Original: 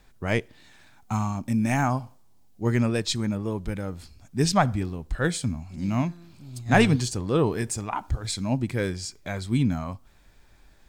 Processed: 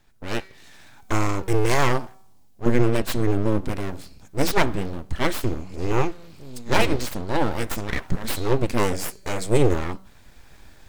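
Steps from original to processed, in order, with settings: tracing distortion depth 0.054 ms; 2.66–3.61 s: bass shelf 250 Hz +10 dB; level rider gain up to 12.5 dB; de-hum 191.1 Hz, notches 24; full-wave rectifier; 8.79–9.74 s: graphic EQ 500/4000/8000 Hz +4/-5/+7 dB; trim -3 dB

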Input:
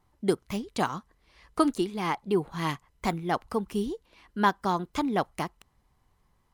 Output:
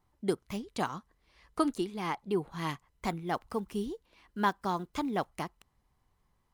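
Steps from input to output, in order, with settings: 3.27–5.31 s: block-companded coder 7-bit; trim -5 dB

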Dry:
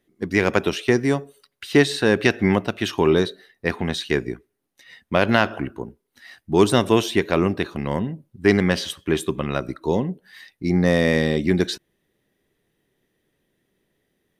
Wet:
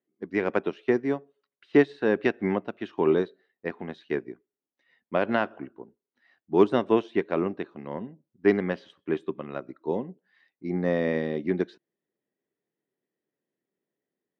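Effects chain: high-pass 230 Hz 12 dB/octave; tape spacing loss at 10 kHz 35 dB; upward expansion 1.5:1, over -38 dBFS

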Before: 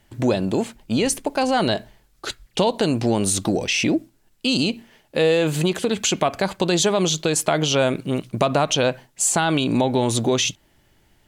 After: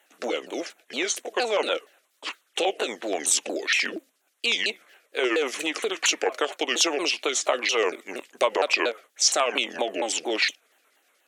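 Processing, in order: sawtooth pitch modulation -7.5 st, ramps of 233 ms; LFO notch square 8.3 Hz 960–4900 Hz; Bessel high-pass 580 Hz, order 6; trim +2 dB

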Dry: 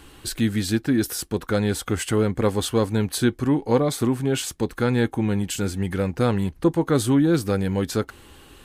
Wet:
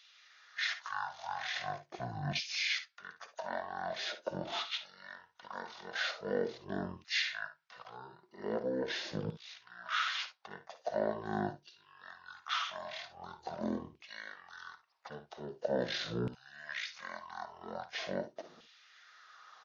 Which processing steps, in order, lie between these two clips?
wide varispeed 0.44×; LFO high-pass saw down 0.43 Hz 260–2800 Hz; early reflections 56 ms -13 dB, 69 ms -17.5 dB; trim -9 dB

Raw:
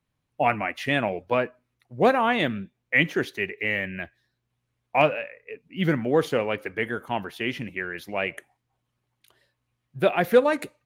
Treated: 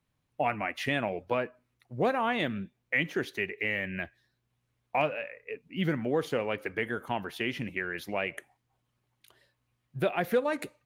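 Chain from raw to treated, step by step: compression 2:1, threshold -30 dBFS, peak gain reduction 10.5 dB

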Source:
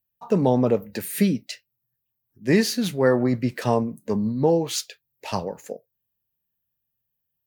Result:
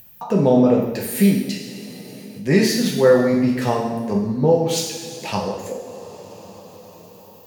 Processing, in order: two-slope reverb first 0.98 s, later 3.4 s, from -19 dB, DRR -2 dB; upward compressor, threshold -24 dBFS

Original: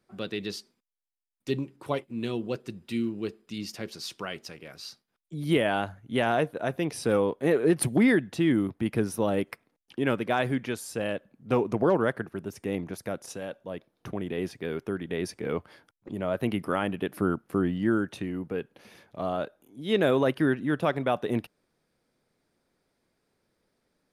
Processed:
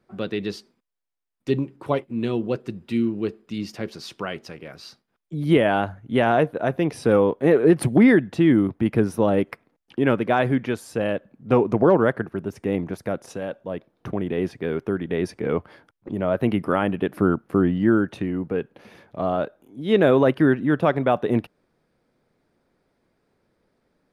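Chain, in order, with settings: treble shelf 3.3 kHz -12 dB; trim +7 dB

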